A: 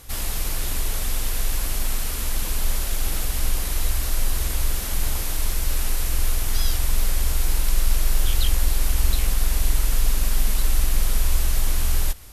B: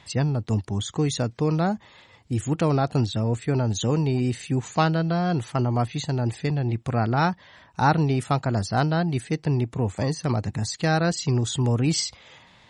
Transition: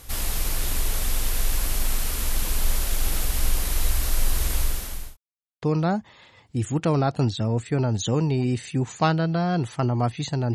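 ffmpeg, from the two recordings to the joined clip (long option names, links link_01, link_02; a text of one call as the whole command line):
ffmpeg -i cue0.wav -i cue1.wav -filter_complex "[0:a]apad=whole_dur=10.54,atrim=end=10.54,asplit=2[link_01][link_02];[link_01]atrim=end=5.17,asetpts=PTS-STARTPTS,afade=type=out:start_time=4.57:duration=0.6[link_03];[link_02]atrim=start=5.17:end=5.62,asetpts=PTS-STARTPTS,volume=0[link_04];[1:a]atrim=start=1.38:end=6.3,asetpts=PTS-STARTPTS,afade=type=in:duration=0.004:curve=hsin[link_05];[link_03][link_04][link_05]concat=n=3:v=0:a=1" out.wav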